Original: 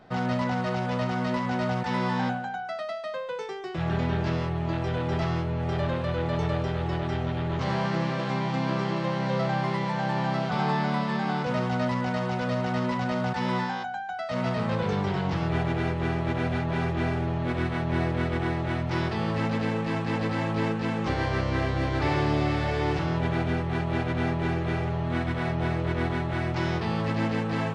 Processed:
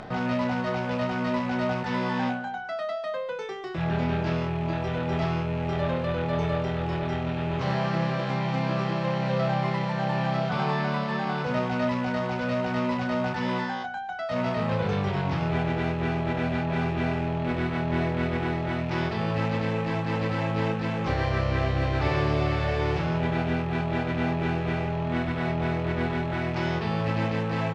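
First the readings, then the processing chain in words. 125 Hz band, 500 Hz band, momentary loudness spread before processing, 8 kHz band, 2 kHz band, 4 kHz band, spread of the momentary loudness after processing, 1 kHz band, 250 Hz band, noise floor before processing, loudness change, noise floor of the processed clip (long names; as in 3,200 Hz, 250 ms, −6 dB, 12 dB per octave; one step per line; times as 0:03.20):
0.0 dB, +1.5 dB, 2 LU, can't be measured, +0.5 dB, 0.0 dB, 3 LU, 0.0 dB, 0.0 dB, −33 dBFS, +0.5 dB, −32 dBFS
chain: loose part that buzzes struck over −28 dBFS, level −32 dBFS
upward compression, threshold −31 dBFS
high-frequency loss of the air 52 metres
double-tracking delay 29 ms −7 dB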